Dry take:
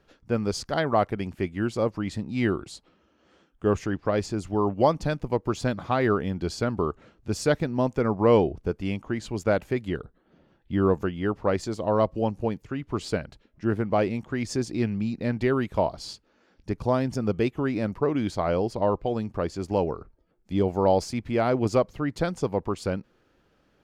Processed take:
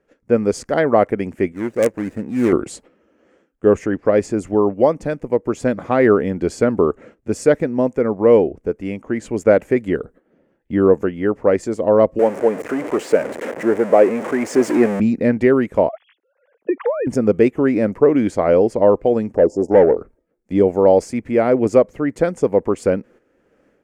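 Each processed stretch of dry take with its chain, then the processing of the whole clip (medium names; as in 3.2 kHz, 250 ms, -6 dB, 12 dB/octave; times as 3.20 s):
1.52–2.53 s: median filter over 41 samples + bass shelf 420 Hz -8 dB + integer overflow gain 19.5 dB
12.19–15.00 s: jump at every zero crossing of -26 dBFS + high-pass 530 Hz + tilt EQ -3.5 dB/octave
15.89–17.07 s: formants replaced by sine waves + compression, threshold -33 dBFS
19.35–19.97 s: Chebyshev band-stop 900–5100 Hz, order 5 + treble shelf 9 kHz -7.5 dB + overdrive pedal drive 18 dB, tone 1.4 kHz, clips at -14 dBFS
whole clip: gate -53 dBFS, range -10 dB; graphic EQ 250/500/2000/4000/8000 Hz +8/+12/+10/-9/+9 dB; level rider; trim -1 dB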